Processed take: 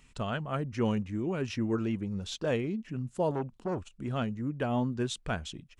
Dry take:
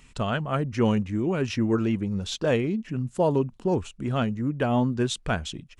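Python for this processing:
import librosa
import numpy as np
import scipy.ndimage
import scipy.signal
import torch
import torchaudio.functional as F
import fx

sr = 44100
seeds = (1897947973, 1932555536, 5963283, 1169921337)

y = fx.transformer_sat(x, sr, knee_hz=610.0, at=(3.31, 3.93))
y = F.gain(torch.from_numpy(y), -6.5).numpy()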